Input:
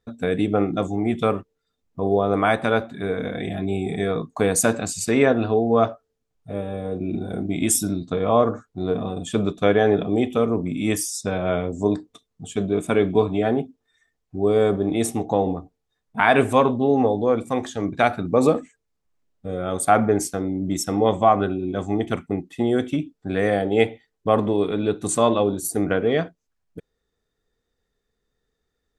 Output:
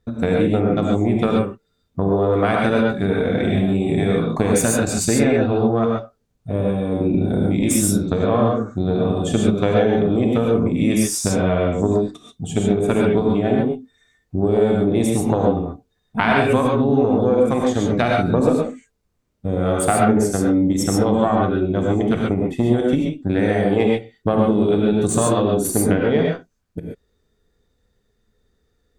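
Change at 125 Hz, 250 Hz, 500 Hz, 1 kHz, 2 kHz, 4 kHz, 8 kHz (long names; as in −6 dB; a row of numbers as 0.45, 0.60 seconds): +7.0, +5.5, +2.5, 0.0, +1.0, +2.5, +2.5 decibels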